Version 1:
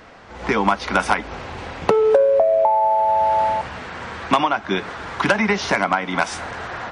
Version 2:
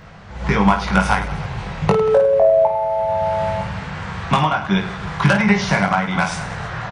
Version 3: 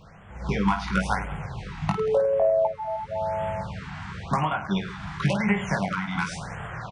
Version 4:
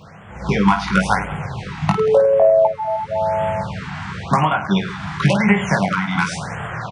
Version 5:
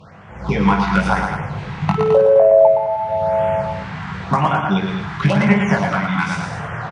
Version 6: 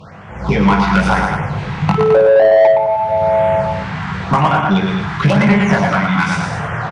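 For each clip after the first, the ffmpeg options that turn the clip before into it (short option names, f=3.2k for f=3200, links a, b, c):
-filter_complex "[0:a]lowshelf=f=210:t=q:w=3:g=8.5,asplit=2[a][b];[b]aecho=0:1:20|52|103.2|185.1|316.2:0.631|0.398|0.251|0.158|0.1[c];[a][c]amix=inputs=2:normalize=0,volume=-1dB"
-af "afftfilt=real='re*(1-between(b*sr/1024,440*pow(5000/440,0.5+0.5*sin(2*PI*0.94*pts/sr))/1.41,440*pow(5000/440,0.5+0.5*sin(2*PI*0.94*pts/sr))*1.41))':imag='im*(1-between(b*sr/1024,440*pow(5000/440,0.5+0.5*sin(2*PI*0.94*pts/sr))/1.41,440*pow(5000/440,0.5+0.5*sin(2*PI*0.94*pts/sr))*1.41))':win_size=1024:overlap=0.75,volume=-8dB"
-af "highpass=86,volume=8.5dB"
-af "aemphasis=mode=reproduction:type=cd,aecho=1:1:116.6|212.8:0.562|0.355,volume=-1dB"
-af "apsyclip=5.5dB,acontrast=32,volume=-5dB"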